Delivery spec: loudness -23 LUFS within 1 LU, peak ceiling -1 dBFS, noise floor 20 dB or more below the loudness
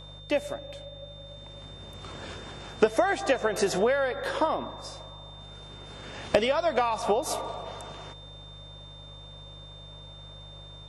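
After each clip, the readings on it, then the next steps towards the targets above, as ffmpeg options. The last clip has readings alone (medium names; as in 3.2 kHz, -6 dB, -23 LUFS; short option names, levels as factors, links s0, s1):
hum 50 Hz; highest harmonic 150 Hz; hum level -46 dBFS; steady tone 3.6 kHz; tone level -47 dBFS; loudness -28.0 LUFS; peak level -8.5 dBFS; loudness target -23.0 LUFS
-> -af "bandreject=f=50:t=h:w=4,bandreject=f=100:t=h:w=4,bandreject=f=150:t=h:w=4"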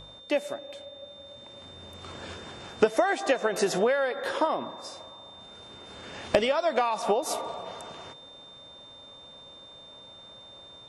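hum not found; steady tone 3.6 kHz; tone level -47 dBFS
-> -af "bandreject=f=3600:w=30"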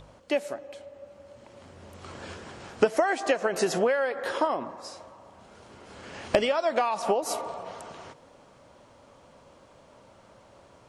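steady tone not found; loudness -27.5 LUFS; peak level -8.0 dBFS; loudness target -23.0 LUFS
-> -af "volume=1.68"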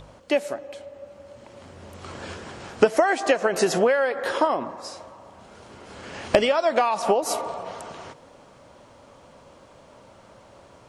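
loudness -23.0 LUFS; peak level -3.5 dBFS; noise floor -51 dBFS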